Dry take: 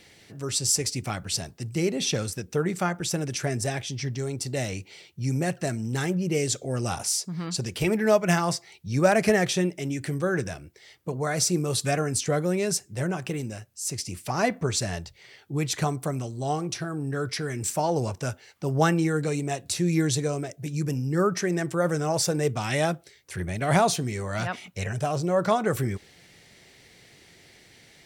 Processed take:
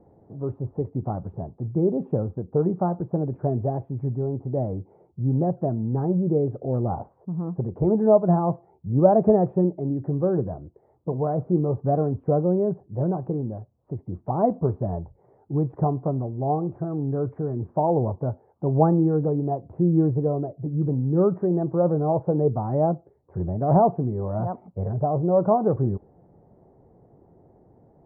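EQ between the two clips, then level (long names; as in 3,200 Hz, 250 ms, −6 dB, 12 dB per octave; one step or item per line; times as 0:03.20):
Butterworth low-pass 940 Hz 36 dB per octave
+4.0 dB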